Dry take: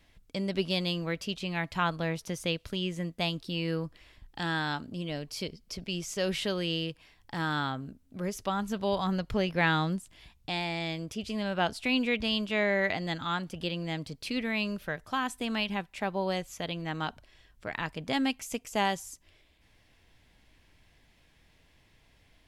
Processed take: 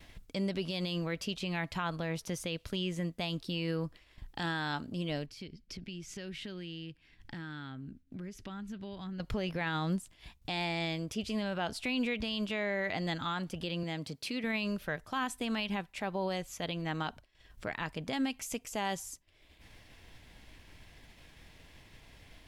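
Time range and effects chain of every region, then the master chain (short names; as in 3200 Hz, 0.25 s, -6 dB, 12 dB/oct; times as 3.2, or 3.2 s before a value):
5.26–9.2 LPF 2400 Hz 6 dB/oct + band shelf 740 Hz -10.5 dB + compressor 2:1, threshold -49 dBFS
13.83–14.44 HPF 120 Hz + compressor 2:1, threshold -35 dBFS
whole clip: upward compressor, threshold -37 dBFS; limiter -24 dBFS; expander -44 dBFS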